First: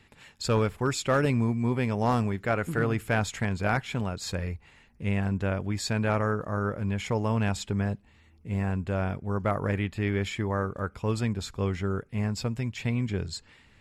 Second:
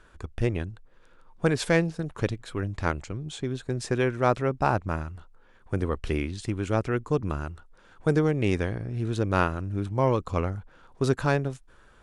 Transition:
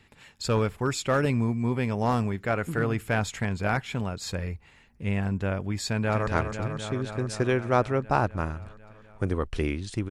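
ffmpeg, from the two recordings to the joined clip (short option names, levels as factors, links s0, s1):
-filter_complex "[0:a]apad=whole_dur=10.1,atrim=end=10.1,atrim=end=6.272[s0];[1:a]atrim=start=2.778:end=6.61[s1];[s0][s1]acrossfade=d=0.004:c1=hsin:c2=hsin,asplit=2[s2][s3];[s3]afade=t=in:st=5.87:d=0.01,afade=t=out:st=6.27:d=0.01,aecho=0:1:250|500|750|1000|1250|1500|1750|2000|2250|2500|2750|3000:0.446684|0.357347|0.285877|0.228702|0.182962|0.146369|0.117095|0.0936763|0.0749411|0.0599529|0.0479623|0.0383698[s4];[s2][s4]amix=inputs=2:normalize=0"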